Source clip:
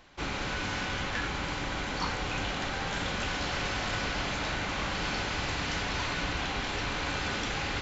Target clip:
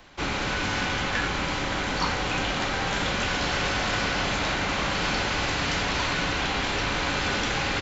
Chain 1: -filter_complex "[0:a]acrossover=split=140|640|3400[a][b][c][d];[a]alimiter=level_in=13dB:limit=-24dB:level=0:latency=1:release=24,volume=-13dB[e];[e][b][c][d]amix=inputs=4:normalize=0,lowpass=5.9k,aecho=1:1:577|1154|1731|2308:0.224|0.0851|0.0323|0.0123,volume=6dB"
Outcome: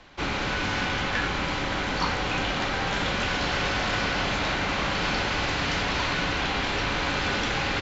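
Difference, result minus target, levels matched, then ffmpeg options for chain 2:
8000 Hz band -3.5 dB
-filter_complex "[0:a]acrossover=split=140|640|3400[a][b][c][d];[a]alimiter=level_in=13dB:limit=-24dB:level=0:latency=1:release=24,volume=-13dB[e];[e][b][c][d]amix=inputs=4:normalize=0,aecho=1:1:577|1154|1731|2308:0.224|0.0851|0.0323|0.0123,volume=6dB"

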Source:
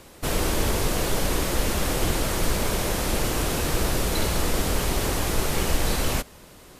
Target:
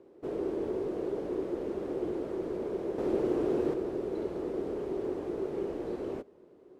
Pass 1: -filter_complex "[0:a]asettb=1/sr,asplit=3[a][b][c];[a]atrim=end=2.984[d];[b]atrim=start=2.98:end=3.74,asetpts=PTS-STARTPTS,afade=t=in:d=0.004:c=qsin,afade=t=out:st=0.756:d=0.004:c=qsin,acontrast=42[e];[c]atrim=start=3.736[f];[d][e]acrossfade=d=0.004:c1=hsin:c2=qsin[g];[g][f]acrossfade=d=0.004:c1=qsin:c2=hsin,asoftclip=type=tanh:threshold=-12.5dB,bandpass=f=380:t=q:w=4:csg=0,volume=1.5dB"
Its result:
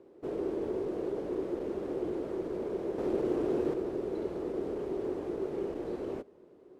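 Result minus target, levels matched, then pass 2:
soft clip: distortion +15 dB
-filter_complex "[0:a]asettb=1/sr,asplit=3[a][b][c];[a]atrim=end=2.984[d];[b]atrim=start=2.98:end=3.74,asetpts=PTS-STARTPTS,afade=t=in:d=0.004:c=qsin,afade=t=out:st=0.756:d=0.004:c=qsin,acontrast=42[e];[c]atrim=start=3.736[f];[d][e]acrossfade=d=0.004:c1=hsin:c2=qsin[g];[g][f]acrossfade=d=0.004:c1=qsin:c2=hsin,asoftclip=type=tanh:threshold=-4dB,bandpass=f=380:t=q:w=4:csg=0,volume=1.5dB"

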